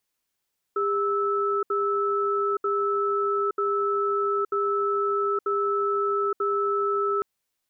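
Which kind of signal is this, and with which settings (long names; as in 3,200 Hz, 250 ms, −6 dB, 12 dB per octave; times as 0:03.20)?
tone pair in a cadence 403 Hz, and 1,310 Hz, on 0.87 s, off 0.07 s, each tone −24.5 dBFS 6.46 s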